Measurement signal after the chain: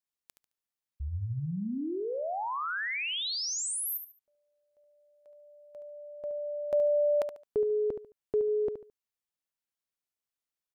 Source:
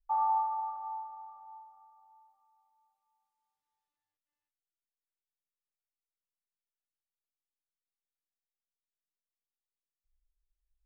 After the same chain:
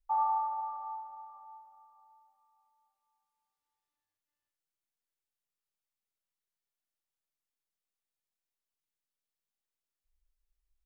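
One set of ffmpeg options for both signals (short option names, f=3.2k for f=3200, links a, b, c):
-af "aecho=1:1:72|144|216:0.355|0.0958|0.0259"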